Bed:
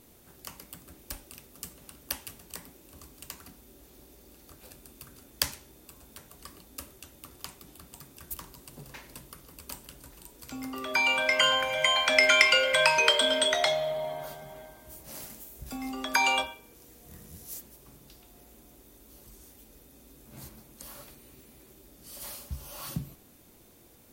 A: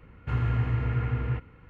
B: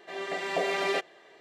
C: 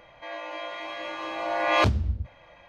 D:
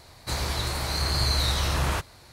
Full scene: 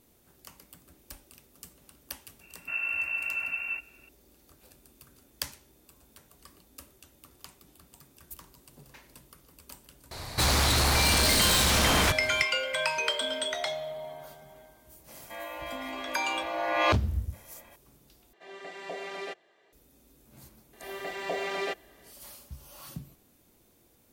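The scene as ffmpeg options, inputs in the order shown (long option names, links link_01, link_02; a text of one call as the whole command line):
ffmpeg -i bed.wav -i cue0.wav -i cue1.wav -i cue2.wav -i cue3.wav -filter_complex "[2:a]asplit=2[link_01][link_02];[0:a]volume=-6.5dB[link_03];[1:a]lowpass=frequency=2400:width_type=q:width=0.5098,lowpass=frequency=2400:width_type=q:width=0.6013,lowpass=frequency=2400:width_type=q:width=0.9,lowpass=frequency=2400:width_type=q:width=2.563,afreqshift=-2800[link_04];[4:a]aeval=exprs='0.282*sin(PI/2*6.31*val(0)/0.282)':channel_layout=same[link_05];[link_03]asplit=2[link_06][link_07];[link_06]atrim=end=18.334[link_08];[link_01]atrim=end=1.4,asetpts=PTS-STARTPTS,volume=-10dB[link_09];[link_07]atrim=start=19.726[link_10];[link_04]atrim=end=1.69,asetpts=PTS-STARTPTS,volume=-6dB,afade=type=in:duration=0.004:curve=hsin,afade=type=out:start_time=1.686:duration=0.004:curve=hsin,adelay=2400[link_11];[link_05]atrim=end=2.32,asetpts=PTS-STARTPTS,volume=-9.5dB,afade=type=in:duration=0.004:curve=hsin,afade=type=out:start_time=2.316:duration=0.004:curve=hsin,adelay=10110[link_12];[3:a]atrim=end=2.68,asetpts=PTS-STARTPTS,volume=-3dB,afade=type=in:duration=0.004:curve=hsin,afade=type=out:start_time=2.676:duration=0.004:curve=hsin,adelay=665028S[link_13];[link_02]atrim=end=1.4,asetpts=PTS-STARTPTS,volume=-4dB,afade=type=in:duration=0.004:curve=hsin,afade=type=out:start_time=1.396:duration=0.004:curve=hsin,adelay=20730[link_14];[link_08][link_09]acrossfade=duration=0.004:curve1=hsin:curve2=hsin[link_15];[link_15][link_10]acrossfade=duration=0.004:curve1=hsin:curve2=hsin[link_16];[link_16][link_11][link_12][link_13][link_14]amix=inputs=5:normalize=0" out.wav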